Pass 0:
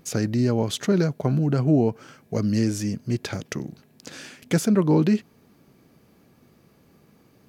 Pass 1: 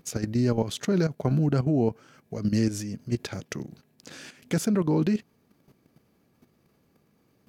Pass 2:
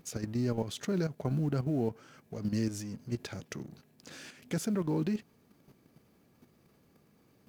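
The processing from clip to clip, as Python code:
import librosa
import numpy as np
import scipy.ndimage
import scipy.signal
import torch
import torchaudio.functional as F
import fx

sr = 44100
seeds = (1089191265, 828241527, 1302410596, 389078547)

y1 = fx.level_steps(x, sr, step_db=11)
y2 = fx.law_mismatch(y1, sr, coded='mu')
y2 = y2 * librosa.db_to_amplitude(-8.0)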